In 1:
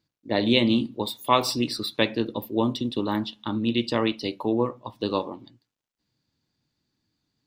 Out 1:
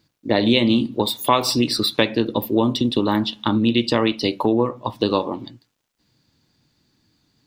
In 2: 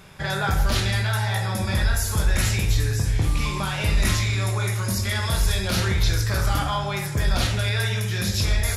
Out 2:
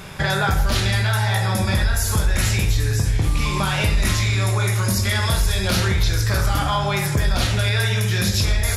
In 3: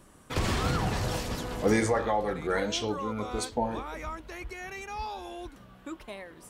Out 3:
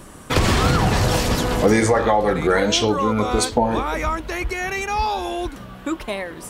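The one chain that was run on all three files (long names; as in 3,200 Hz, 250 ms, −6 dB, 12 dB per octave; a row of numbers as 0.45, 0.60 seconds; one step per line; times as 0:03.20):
downward compressor 2.5 to 1, threshold −30 dBFS
loudness normalisation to −20 LKFS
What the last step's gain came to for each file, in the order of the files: +12.5, +10.5, +15.0 decibels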